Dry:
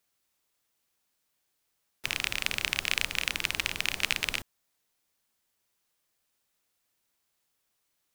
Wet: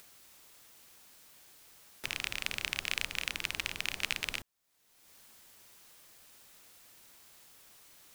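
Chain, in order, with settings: upward compressor, threshold -32 dBFS; gain -5.5 dB

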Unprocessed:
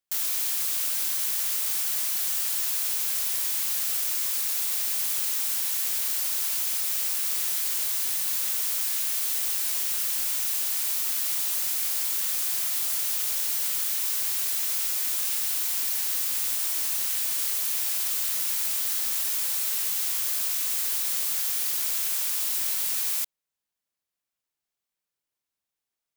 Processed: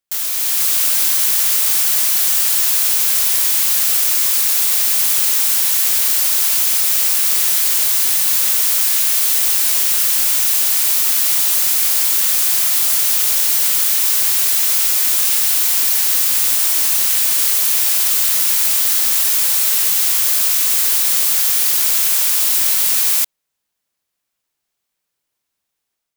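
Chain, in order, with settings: AGC gain up to 6 dB; in parallel at -10.5 dB: bit-crush 5-bit; on the sum: gain +4 dB

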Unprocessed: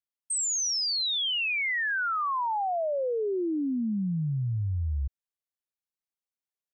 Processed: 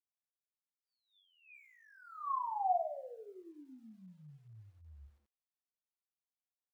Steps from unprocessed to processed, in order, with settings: spectral gate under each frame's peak -20 dB strong; vocal tract filter a; doubler 27 ms -4 dB; lo-fi delay 97 ms, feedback 35%, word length 11-bit, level -13 dB; gain -1.5 dB

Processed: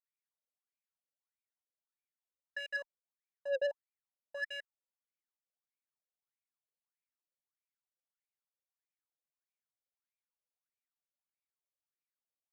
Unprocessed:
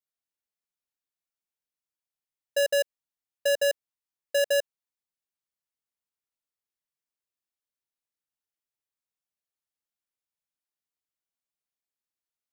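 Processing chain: added harmonics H 6 -19 dB, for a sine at -21.5 dBFS; wah 1.6 Hz 510–2400 Hz, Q 12; soft clip -34 dBFS, distortion -6 dB; gain +5 dB

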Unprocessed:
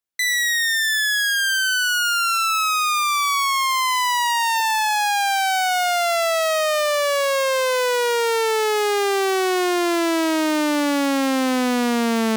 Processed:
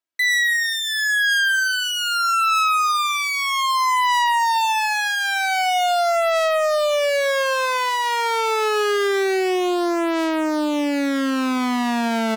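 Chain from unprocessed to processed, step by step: HPF 180 Hz 6 dB/oct; high shelf 5100 Hz -9.5 dB; comb 3.1 ms, depth 89%; speakerphone echo 90 ms, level -19 dB; limiter -13.5 dBFS, peak gain reduction 6 dB

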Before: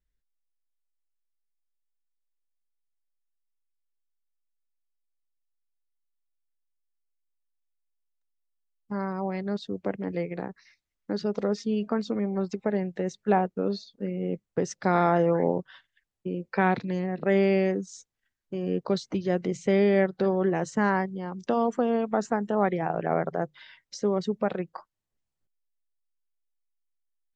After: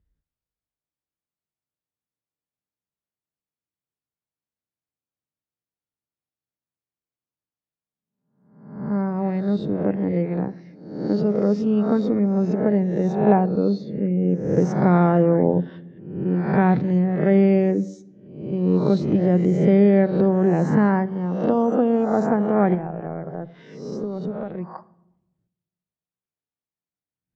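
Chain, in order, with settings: spectral swells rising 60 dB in 0.75 s; HPF 84 Hz; 22.74–24.75 compressor 4:1, threshold -33 dBFS, peak gain reduction 12 dB; tilt -4 dB/oct; shoebox room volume 2700 m³, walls furnished, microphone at 0.51 m

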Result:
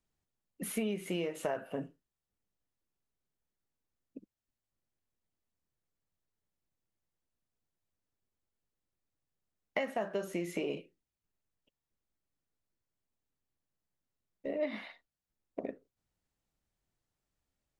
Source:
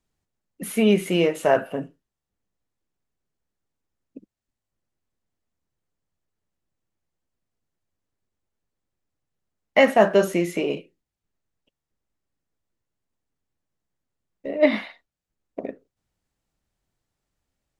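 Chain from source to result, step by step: compressor 16:1, threshold -24 dBFS, peak gain reduction 15 dB; gain -6.5 dB

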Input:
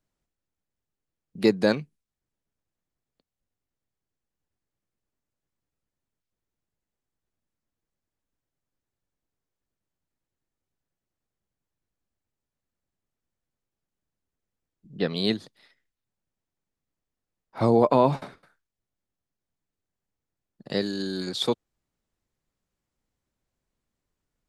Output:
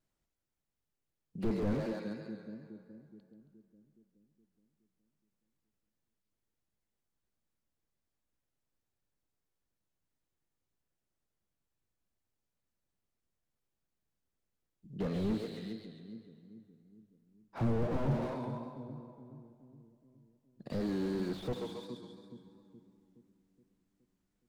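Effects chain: split-band echo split 300 Hz, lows 0.42 s, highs 0.137 s, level -13 dB; plate-style reverb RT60 2.6 s, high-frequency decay 0.7×, DRR 15 dB; vibrato 2.8 Hz 47 cents; slew limiter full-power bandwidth 13 Hz; gain -2.5 dB

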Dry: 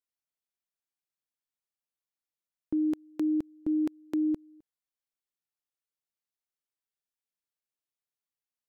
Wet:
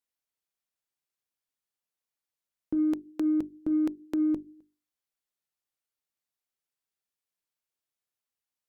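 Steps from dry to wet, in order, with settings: notches 50/100/150/200/250/300/350/400 Hz; added harmonics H 4 -34 dB, 7 -42 dB, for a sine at -23 dBFS; gain +2.5 dB

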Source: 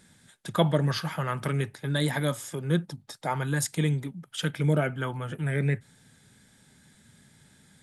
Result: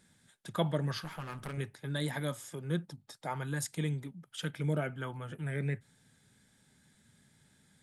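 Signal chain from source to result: 1.04–1.58 one-sided clip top -39 dBFS; gain -8 dB

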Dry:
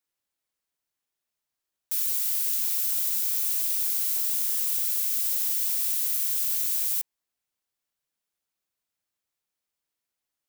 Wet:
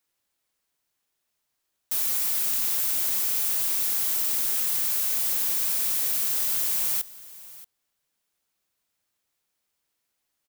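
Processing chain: soft clip -29.5 dBFS, distortion -9 dB; on a send: echo 0.63 s -19 dB; on the sum: gain +7 dB

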